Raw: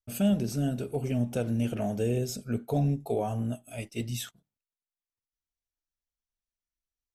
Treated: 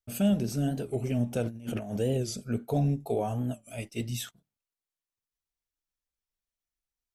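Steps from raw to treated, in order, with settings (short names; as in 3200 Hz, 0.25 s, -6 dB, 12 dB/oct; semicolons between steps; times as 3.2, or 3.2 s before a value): 1.43–1.97 negative-ratio compressor -34 dBFS, ratio -0.5; record warp 45 rpm, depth 160 cents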